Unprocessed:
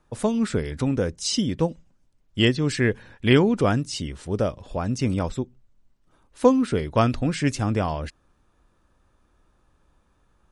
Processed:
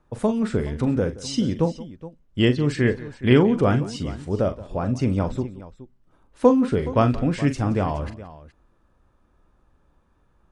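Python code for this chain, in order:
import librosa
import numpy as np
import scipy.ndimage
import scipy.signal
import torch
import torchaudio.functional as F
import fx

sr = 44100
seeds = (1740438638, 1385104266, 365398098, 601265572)

p1 = fx.high_shelf(x, sr, hz=2500.0, db=-10.0)
p2 = p1 + fx.echo_multitap(p1, sr, ms=(41, 174, 420), db=(-10.5, -19.0, -16.5), dry=0)
y = F.gain(torch.from_numpy(p2), 1.5).numpy()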